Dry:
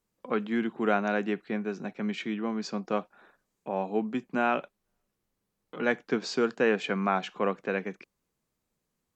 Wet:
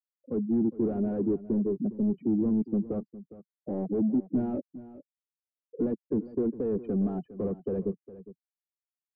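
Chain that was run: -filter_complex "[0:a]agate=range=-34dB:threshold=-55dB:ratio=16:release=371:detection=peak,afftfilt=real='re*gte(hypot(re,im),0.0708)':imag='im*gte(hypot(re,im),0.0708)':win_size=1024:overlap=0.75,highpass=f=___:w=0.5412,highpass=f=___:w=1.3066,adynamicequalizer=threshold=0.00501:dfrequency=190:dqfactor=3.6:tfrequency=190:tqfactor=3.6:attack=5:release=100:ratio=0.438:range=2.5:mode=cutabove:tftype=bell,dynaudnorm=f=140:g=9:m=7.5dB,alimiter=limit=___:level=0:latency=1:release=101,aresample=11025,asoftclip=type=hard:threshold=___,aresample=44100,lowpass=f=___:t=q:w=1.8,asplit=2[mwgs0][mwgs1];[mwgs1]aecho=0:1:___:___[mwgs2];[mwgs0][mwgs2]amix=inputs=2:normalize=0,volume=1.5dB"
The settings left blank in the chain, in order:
80, 80, -11dB, -27.5dB, 330, 409, 0.158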